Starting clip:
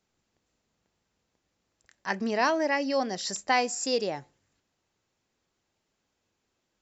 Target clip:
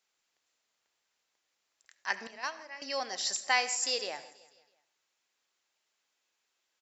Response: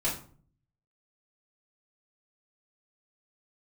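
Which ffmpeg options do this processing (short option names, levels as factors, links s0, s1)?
-filter_complex "[0:a]bass=f=250:g=-14,treble=f=4000:g=-2,asettb=1/sr,asplit=3[s0][s1][s2];[s0]atrim=end=2.274[s3];[s1]atrim=start=2.27:end=2.82,asetpts=PTS-STARTPTS,afade=t=in:d=0.004:c=qsin,afade=t=out:st=0.546:d=0.004:c=qsin,agate=range=0.158:threshold=0.0891:ratio=16:detection=peak[s4];[s2]atrim=start=2.816[s5];[s3][s4]acrossfade=d=0.004:c1=hsin:c2=qsin[s6];[s6][s5]acrossfade=d=0.004:c1=qsin:c2=hsin,tiltshelf=f=860:g=-8,aecho=1:1:163|326|489|652:0.0891|0.049|0.027|0.0148,asplit=2[s7][s8];[1:a]atrim=start_sample=2205,adelay=69[s9];[s8][s9]afir=irnorm=-1:irlink=0,volume=0.0891[s10];[s7][s10]amix=inputs=2:normalize=0,volume=0.562"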